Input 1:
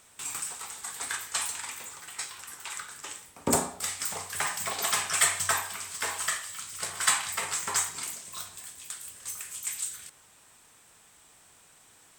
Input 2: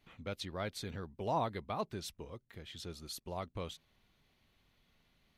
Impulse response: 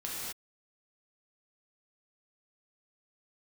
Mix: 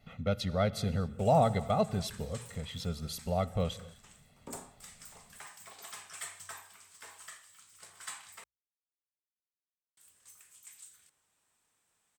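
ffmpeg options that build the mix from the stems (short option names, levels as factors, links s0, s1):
-filter_complex "[0:a]adelay=1000,volume=0.112,asplit=3[s0][s1][s2];[s0]atrim=end=8.44,asetpts=PTS-STARTPTS,afade=t=out:st=8.436:d=0.004:c=hsin[s3];[s1]atrim=start=8.44:end=9.97,asetpts=PTS-STARTPTS,volume=0[s4];[s2]atrim=start=9.97,asetpts=PTS-STARTPTS,afade=t=in:d=0.004:c=hsin[s5];[s3][s4][s5]concat=n=3:v=0:a=1[s6];[1:a]equalizer=f=210:w=0.45:g=9.5,aecho=1:1:1.5:0.93,volume=1.12,asplit=2[s7][s8];[s8]volume=0.141[s9];[2:a]atrim=start_sample=2205[s10];[s9][s10]afir=irnorm=-1:irlink=0[s11];[s6][s7][s11]amix=inputs=3:normalize=0,bandreject=f=60:t=h:w=6,bandreject=f=120:t=h:w=6"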